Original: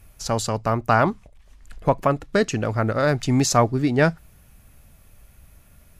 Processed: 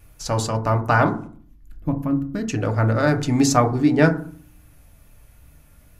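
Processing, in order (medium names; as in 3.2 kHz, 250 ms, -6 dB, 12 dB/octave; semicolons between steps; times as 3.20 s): time-frequency box 1.35–2.49 s, 350–11000 Hz -14 dB; wow and flutter 29 cents; FDN reverb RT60 0.47 s, low-frequency decay 1.45×, high-frequency decay 0.3×, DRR 4.5 dB; trim -1 dB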